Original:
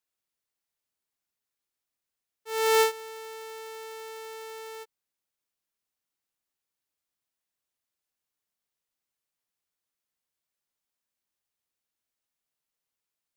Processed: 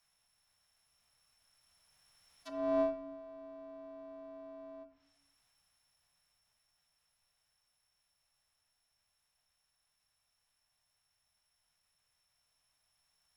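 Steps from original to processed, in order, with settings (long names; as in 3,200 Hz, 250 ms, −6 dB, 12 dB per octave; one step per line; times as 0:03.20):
samples sorted by size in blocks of 8 samples
phase-vocoder pitch shift with formants kept −3 semitones
drawn EQ curve 210 Hz 0 dB, 450 Hz −15 dB, 760 Hz −2 dB
frequency shifter −95 Hz
treble cut that deepens with the level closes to 480 Hz, closed at −42.5 dBFS
rectangular room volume 160 cubic metres, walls mixed, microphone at 0.35 metres
level +2.5 dB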